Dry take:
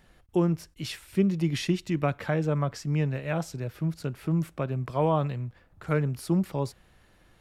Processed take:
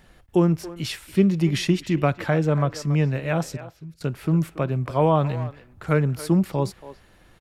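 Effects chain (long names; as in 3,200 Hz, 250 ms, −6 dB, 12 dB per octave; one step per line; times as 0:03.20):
0:03.57–0:04.01: guitar amp tone stack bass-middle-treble 6-0-2
far-end echo of a speakerphone 280 ms, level −14 dB
level +5.5 dB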